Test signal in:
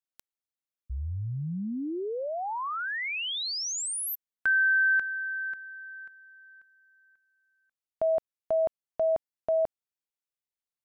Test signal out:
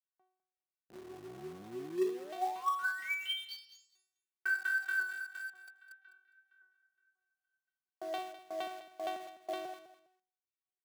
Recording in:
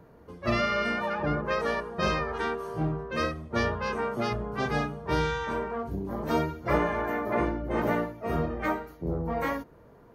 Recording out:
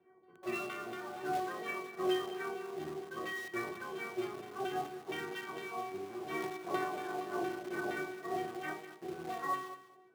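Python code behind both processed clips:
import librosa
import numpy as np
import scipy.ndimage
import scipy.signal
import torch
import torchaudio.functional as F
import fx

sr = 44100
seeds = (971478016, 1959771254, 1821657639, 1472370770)

p1 = fx.octave_divider(x, sr, octaves=1, level_db=2.0)
p2 = fx.low_shelf(p1, sr, hz=440.0, db=3.5)
p3 = fx.filter_lfo_lowpass(p2, sr, shape='saw_down', hz=4.3, low_hz=610.0, high_hz=3500.0, q=2.9)
p4 = scipy.signal.sosfilt(scipy.signal.butter(2, 5400.0, 'lowpass', fs=sr, output='sos'), p3)
p5 = fx.stiff_resonator(p4, sr, f0_hz=370.0, decay_s=0.59, stiffness=0.002)
p6 = fx.quant_companded(p5, sr, bits=4)
p7 = p5 + F.gain(torch.from_numpy(p6), -8.0).numpy()
p8 = scipy.signal.sosfilt(scipy.signal.butter(4, 150.0, 'highpass', fs=sr, output='sos'), p7)
p9 = fx.echo_feedback(p8, sr, ms=204, feedback_pct=21, wet_db=-13.5)
y = F.gain(torch.from_numpy(p9), 8.0).numpy()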